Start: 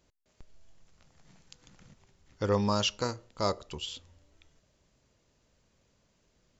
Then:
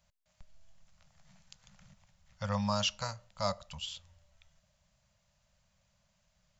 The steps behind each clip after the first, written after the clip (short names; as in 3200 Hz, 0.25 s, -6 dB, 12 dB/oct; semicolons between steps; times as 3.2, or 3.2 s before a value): elliptic band-stop 200–570 Hz, stop band 40 dB; gain -2 dB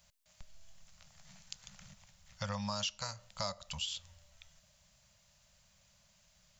high shelf 2300 Hz +9 dB; compressor 4:1, threshold -38 dBFS, peak gain reduction 14.5 dB; gain +2 dB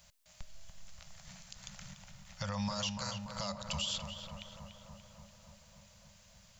limiter -32 dBFS, peak gain reduction 11 dB; on a send: darkening echo 0.29 s, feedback 74%, low-pass 2400 Hz, level -6 dB; on the sum: gain +5.5 dB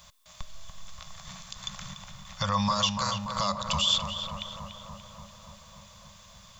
small resonant body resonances 1100/3500 Hz, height 14 dB, ringing for 25 ms; gain +7.5 dB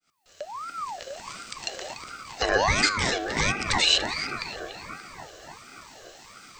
opening faded in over 0.79 s; de-hum 95.6 Hz, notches 39; ring modulator with a swept carrier 960 Hz, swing 45%, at 1.4 Hz; gain +7 dB